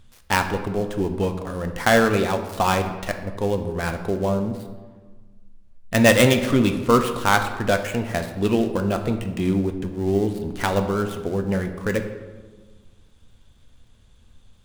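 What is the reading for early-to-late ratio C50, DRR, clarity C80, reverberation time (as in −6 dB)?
9.0 dB, 5.5 dB, 10.5 dB, 1.4 s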